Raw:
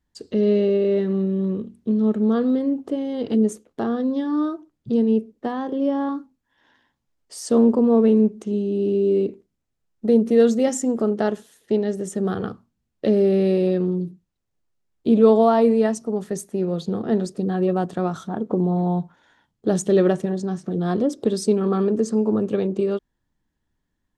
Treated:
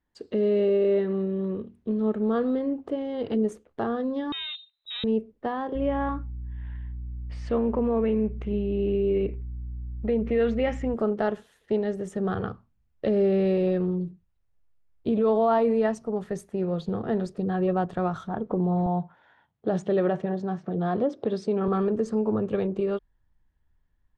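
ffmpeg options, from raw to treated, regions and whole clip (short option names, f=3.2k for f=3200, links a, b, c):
-filter_complex "[0:a]asettb=1/sr,asplit=3[a][b][c];[a]atrim=end=4.324[d];[b]atrim=start=4.32:end=5.04,asetpts=PTS-STARTPTS,afade=t=in:d=0.004:c=qsin,afade=t=out:st=0.716:d=0.004:c=qsin,equalizer=f=280:w=6.2:g=5,asoftclip=type=hard:threshold=-27.5dB,lowpass=f=3.4k:t=q:w=0.5098,lowpass=f=3.4k:t=q:w=0.6013,lowpass=f=3.4k:t=q:w=0.9,lowpass=f=3.4k:t=q:w=2.563,afreqshift=-4000[e];[c]atrim=start=5.036[f];[d][e]acrossfade=d=0.004:c1=hsin:c2=qsin[g];[g][f]acrossfade=d=0.004:c1=qsin:c2=hsin,asettb=1/sr,asplit=3[h][i][j];[h]atrim=end=5.754[k];[i]atrim=start=5.75:end=10.94,asetpts=PTS-STARTPTS,afade=t=in:d=0.004:c=qsin,afade=t=out:st=5.186:d=0.004:c=qsin,lowpass=3.3k,equalizer=f=2.3k:t=o:w=0.8:g=10.5,aeval=exprs='val(0)+0.0112*(sin(2*PI*60*n/s)+sin(2*PI*2*60*n/s)/2+sin(2*PI*3*60*n/s)/3+sin(2*PI*4*60*n/s)/4+sin(2*PI*5*60*n/s)/5)':c=same[l];[j]atrim=start=10.936[m];[k][l]acrossfade=d=0.004:c1=hsin:c2=qsin[n];[n][m]acrossfade=d=0.004:c1=qsin:c2=hsin,asettb=1/sr,asplit=3[o][p][q];[o]atrim=end=18.864[r];[p]atrim=start=18.86:end=21.68,asetpts=PTS-STARTPTS,afade=t=in:d=0.004:c=qsin,afade=t=out:st=2.816:d=0.004:c=qsin,highpass=120,lowpass=4.7k,equalizer=f=710:t=o:w=0.65:g=4[s];[q]atrim=start=21.676[t];[r][s]acrossfade=d=0.004:c1=hsin:c2=qsin[u];[u][t]acrossfade=d=0.004:c1=qsin:c2=hsin,asubboost=boost=7.5:cutoff=97,alimiter=limit=-14dB:level=0:latency=1:release=57,bass=f=250:g=-7,treble=f=4k:g=-15"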